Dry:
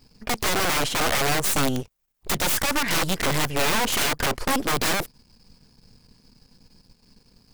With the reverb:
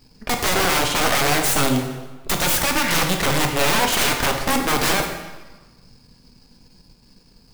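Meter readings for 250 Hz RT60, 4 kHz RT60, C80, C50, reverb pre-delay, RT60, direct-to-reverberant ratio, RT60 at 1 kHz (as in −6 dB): 1.2 s, 1.0 s, 7.5 dB, 5.5 dB, 11 ms, 1.2 s, 3.0 dB, 1.3 s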